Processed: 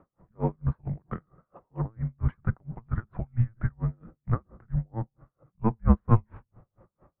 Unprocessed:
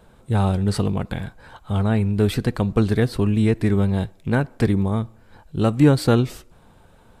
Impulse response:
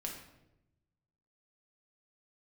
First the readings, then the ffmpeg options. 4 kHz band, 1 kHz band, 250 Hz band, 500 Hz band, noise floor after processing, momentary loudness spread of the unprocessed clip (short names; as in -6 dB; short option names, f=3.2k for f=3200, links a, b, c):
under -35 dB, -7.5 dB, -12.5 dB, -16.0 dB, -85 dBFS, 10 LU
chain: -filter_complex "[0:a]highpass=f=180:t=q:w=0.5412,highpass=f=180:t=q:w=1.307,lowpass=f=2k:t=q:w=0.5176,lowpass=f=2k:t=q:w=0.7071,lowpass=f=2k:t=q:w=1.932,afreqshift=-340,asplit=2[a][b];[1:a]atrim=start_sample=2205,lowpass=1.5k[c];[b][c]afir=irnorm=-1:irlink=0,volume=-19.5dB[d];[a][d]amix=inputs=2:normalize=0,aeval=exprs='val(0)*pow(10,-39*(0.5-0.5*cos(2*PI*4.4*n/s))/20)':c=same"